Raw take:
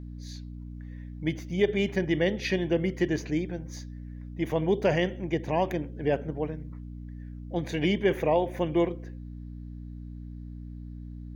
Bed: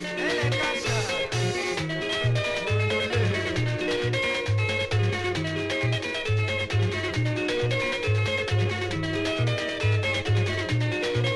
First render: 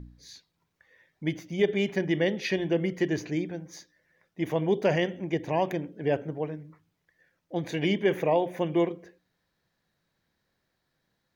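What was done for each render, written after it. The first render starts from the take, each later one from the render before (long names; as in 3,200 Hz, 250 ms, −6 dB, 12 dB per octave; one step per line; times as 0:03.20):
hum removal 60 Hz, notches 5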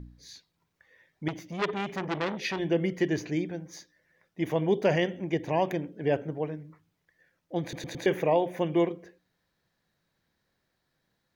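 0:01.28–0:02.59: saturating transformer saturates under 2,000 Hz
0:07.62: stutter in place 0.11 s, 4 plays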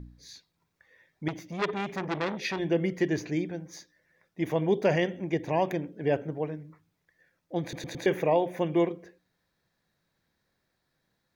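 notch filter 3,000 Hz, Q 16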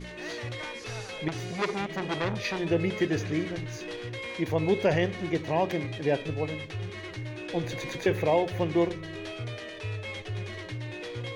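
mix in bed −11.5 dB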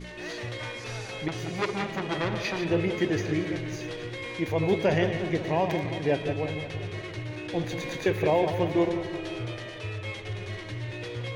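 delay that plays each chunk backwards 115 ms, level −9 dB
bucket-brigade delay 177 ms, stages 4,096, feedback 64%, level −11 dB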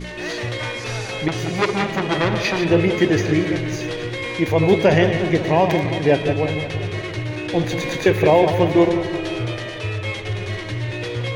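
level +9.5 dB
brickwall limiter −3 dBFS, peak gain reduction 1 dB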